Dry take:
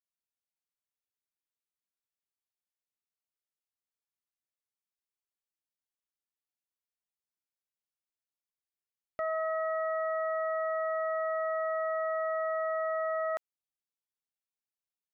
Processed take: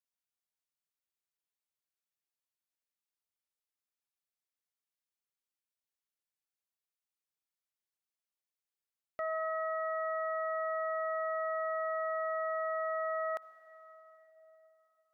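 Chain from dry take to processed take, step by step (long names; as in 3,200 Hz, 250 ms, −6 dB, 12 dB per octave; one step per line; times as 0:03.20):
low-shelf EQ 500 Hz −5.5 dB
convolution reverb RT60 4.2 s, pre-delay 49 ms, DRR 14.5 dB
level −1.5 dB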